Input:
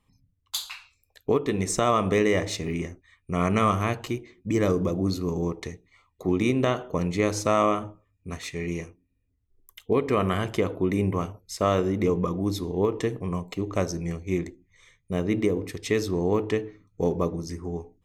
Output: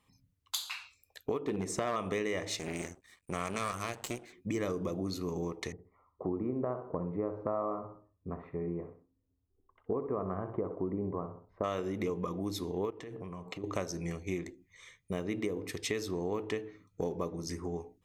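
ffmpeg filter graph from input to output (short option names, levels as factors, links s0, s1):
-filter_complex "[0:a]asettb=1/sr,asplit=3[s0][s1][s2];[s0]atrim=end=1.414[s3];[s1]atrim=start=1.41:end=1.96,asetpts=PTS-STARTPTS,afade=t=in:d=0.004:c=qsin,afade=t=out:st=0.546:d=0.004:c=qsin,highpass=f=110:p=1,tiltshelf=f=1100:g=6,volume=5.62,asoftclip=hard,volume=0.178[s4];[s2]atrim=start=1.956[s5];[s3][s4]acrossfade=d=0.004:c1=hsin:c2=qsin[s6];[s6][s5]acrossfade=d=0.004:c1=qsin:c2=hsin,asettb=1/sr,asplit=3[s7][s8][s9];[s7]atrim=end=2.594[s10];[s8]atrim=start=2.59:end=4.33,asetpts=PTS-STARTPTS,afade=t=in:d=0.004:c=qsin,afade=t=out:st=1.736:d=0.004:c=qsin,equalizer=f=8000:t=o:w=0.55:g=14.5,aeval=exprs='max(val(0),0)':c=same[s11];[s9]atrim=start=4.326[s12];[s10][s11]acrossfade=d=0.004:c1=hsin:c2=qsin[s13];[s13][s12]acrossfade=d=0.004:c1=qsin:c2=hsin,asettb=1/sr,asplit=3[s14][s15][s16];[s14]atrim=end=5.724[s17];[s15]atrim=start=5.72:end=11.64,asetpts=PTS-STARTPTS,afade=t=in:d=0.004:c=qsin,afade=t=out:st=5.916:d=0.004:c=qsin,lowpass=f=1100:w=0.5412,lowpass=f=1100:w=1.3066,aecho=1:1:64|128|192:0.266|0.0851|0.0272,atrim=end_sample=261072[s18];[s16]atrim=start=11.636[s19];[s17][s18]acrossfade=d=0.004:c1=hsin:c2=qsin[s20];[s20][s19]acrossfade=d=0.004:c1=qsin:c2=hsin,asettb=1/sr,asplit=3[s21][s22][s23];[s21]atrim=end=12.904[s24];[s22]atrim=start=12.9:end=13.64,asetpts=PTS-STARTPTS,afade=t=in:d=0.004:c=qsin,afade=t=out:st=0.736:d=0.004:c=qsin,lowpass=f=3200:p=1,bandreject=f=112.3:t=h:w=4,bandreject=f=224.6:t=h:w=4,bandreject=f=336.9:t=h:w=4,bandreject=f=449.2:t=h:w=4,bandreject=f=561.5:t=h:w=4,bandreject=f=673.8:t=h:w=4,bandreject=f=786.1:t=h:w=4,bandreject=f=898.4:t=h:w=4,bandreject=f=1010.7:t=h:w=4,bandreject=f=1123:t=h:w=4,bandreject=f=1235.3:t=h:w=4,bandreject=f=1347.6:t=h:w=4,bandreject=f=1459.9:t=h:w=4,bandreject=f=1572.2:t=h:w=4,bandreject=f=1684.5:t=h:w=4,acompressor=threshold=0.0141:ratio=8:attack=3.2:release=140:knee=1:detection=peak[s25];[s23]atrim=start=13.636[s26];[s24][s25]acrossfade=d=0.004:c1=hsin:c2=qsin[s27];[s27][s26]acrossfade=d=0.004:c1=qsin:c2=hsin,highpass=f=110:p=1,equalizer=f=150:w=0.37:g=-3.5,acompressor=threshold=0.0158:ratio=3,volume=1.26"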